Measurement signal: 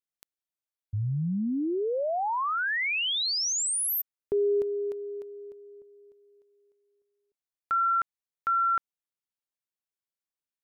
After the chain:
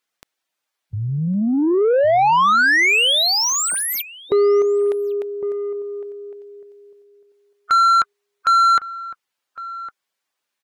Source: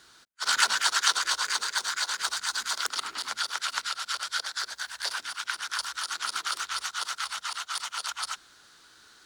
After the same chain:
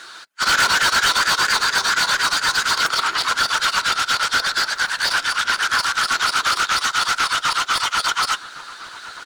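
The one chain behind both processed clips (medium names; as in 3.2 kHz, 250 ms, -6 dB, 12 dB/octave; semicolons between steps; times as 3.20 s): coarse spectral quantiser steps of 15 dB; overdrive pedal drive 27 dB, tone 3.3 kHz, clips at -6.5 dBFS; echo from a far wall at 190 m, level -14 dB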